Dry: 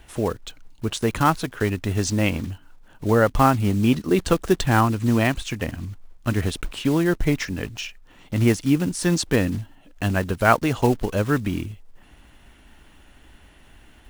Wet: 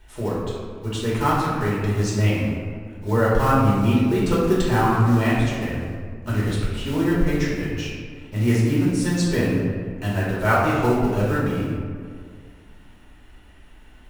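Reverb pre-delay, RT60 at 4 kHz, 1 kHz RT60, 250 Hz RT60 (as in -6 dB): 3 ms, 1.0 s, 1.9 s, 2.3 s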